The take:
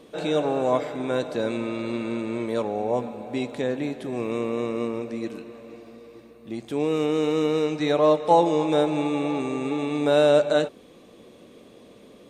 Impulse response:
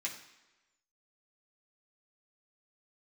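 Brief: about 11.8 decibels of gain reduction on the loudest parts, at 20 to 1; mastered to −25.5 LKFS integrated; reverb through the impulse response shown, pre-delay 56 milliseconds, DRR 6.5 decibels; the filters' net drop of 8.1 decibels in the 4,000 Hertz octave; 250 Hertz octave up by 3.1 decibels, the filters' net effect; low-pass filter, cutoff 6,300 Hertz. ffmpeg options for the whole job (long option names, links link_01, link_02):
-filter_complex "[0:a]lowpass=6300,equalizer=frequency=250:width_type=o:gain=4,equalizer=frequency=4000:width_type=o:gain=-9,acompressor=threshold=-24dB:ratio=20,asplit=2[link_01][link_02];[1:a]atrim=start_sample=2205,adelay=56[link_03];[link_02][link_03]afir=irnorm=-1:irlink=0,volume=-8dB[link_04];[link_01][link_04]amix=inputs=2:normalize=0,volume=3.5dB"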